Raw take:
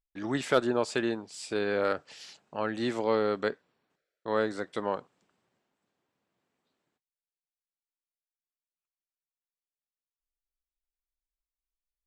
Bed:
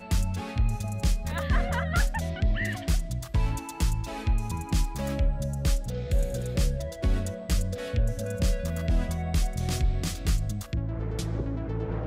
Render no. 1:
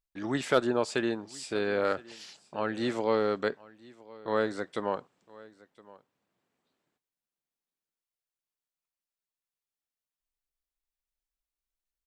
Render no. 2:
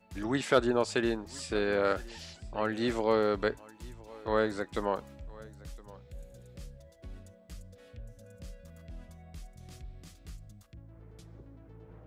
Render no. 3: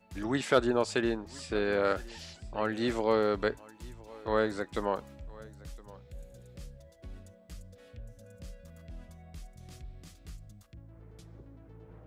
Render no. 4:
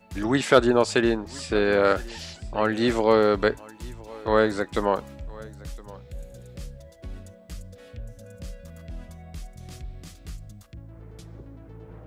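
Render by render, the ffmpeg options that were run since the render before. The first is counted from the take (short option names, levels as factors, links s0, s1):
-af "aecho=1:1:1016:0.0794"
-filter_complex "[1:a]volume=0.0891[s0];[0:a][s0]amix=inputs=2:normalize=0"
-filter_complex "[0:a]asettb=1/sr,asplit=3[s0][s1][s2];[s0]atrim=end=1.014[s3];[s1]atrim=start=1.01:end=1.65,asetpts=PTS-STARTPTS,afade=t=in:d=0.004:c=qsin,afade=t=out:st=0.636:d=0.004:c=qsin,highshelf=f=5800:g=-7[s4];[s2]atrim=start=1.646[s5];[s3][s4]acrossfade=d=0.004:c1=hsin:c2=qsin[s6];[s6][s5]acrossfade=d=0.004:c1=qsin:c2=hsin"
-af "volume=2.51"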